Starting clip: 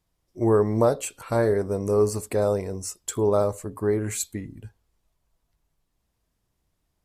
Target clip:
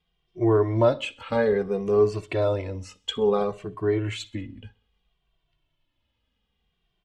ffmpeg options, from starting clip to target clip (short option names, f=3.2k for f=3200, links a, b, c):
-filter_complex "[0:a]lowpass=f=3.1k:t=q:w=5.4,asplit=2[a][b];[b]aecho=0:1:64|128|192:0.0668|0.0341|0.0174[c];[a][c]amix=inputs=2:normalize=0,asplit=2[d][e];[e]adelay=2.1,afreqshift=-0.6[f];[d][f]amix=inputs=2:normalize=1,volume=2dB"